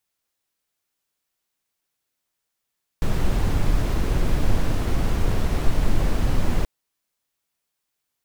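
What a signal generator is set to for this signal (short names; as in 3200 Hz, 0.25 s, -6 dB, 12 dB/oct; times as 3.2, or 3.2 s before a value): noise brown, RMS -18 dBFS 3.63 s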